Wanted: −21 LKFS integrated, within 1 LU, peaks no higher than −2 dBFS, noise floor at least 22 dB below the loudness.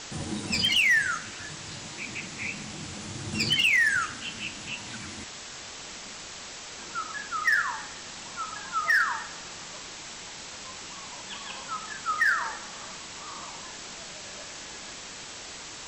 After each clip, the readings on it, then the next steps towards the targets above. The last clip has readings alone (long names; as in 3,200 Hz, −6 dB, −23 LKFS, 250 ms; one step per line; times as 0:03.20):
share of clipped samples 0.4%; peaks flattened at −17.5 dBFS; background noise floor −42 dBFS; target noise floor −52 dBFS; integrated loudness −29.5 LKFS; sample peak −17.5 dBFS; target loudness −21.0 LKFS
→ clipped peaks rebuilt −17.5 dBFS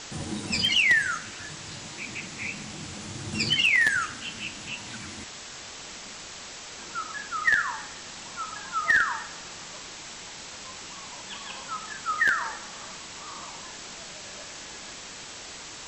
share of clipped samples 0.0%; background noise floor −42 dBFS; target noise floor −49 dBFS
→ broadband denoise 7 dB, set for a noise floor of −42 dBFS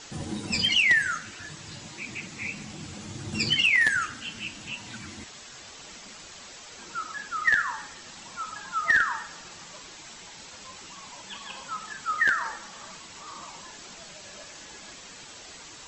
background noise floor −46 dBFS; target noise floor −48 dBFS
→ broadband denoise 6 dB, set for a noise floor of −46 dBFS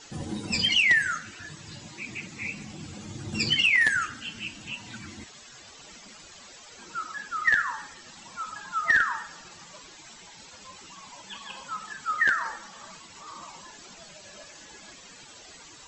background noise floor −49 dBFS; integrated loudness −25.5 LKFS; sample peak −8.5 dBFS; target loudness −21.0 LKFS
→ level +4.5 dB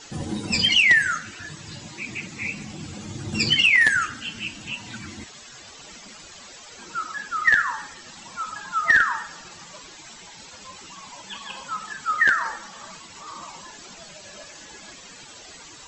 integrated loudness −21.0 LKFS; sample peak −4.0 dBFS; background noise floor −45 dBFS